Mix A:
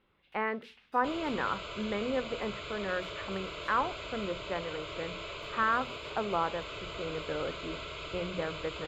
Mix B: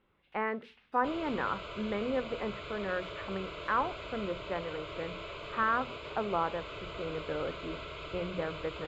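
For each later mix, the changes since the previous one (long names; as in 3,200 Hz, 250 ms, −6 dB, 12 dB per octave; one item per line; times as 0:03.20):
master: add high-shelf EQ 4,400 Hz −11.5 dB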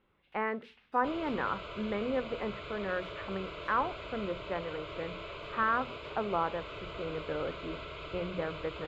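second sound: add high-frequency loss of the air 54 metres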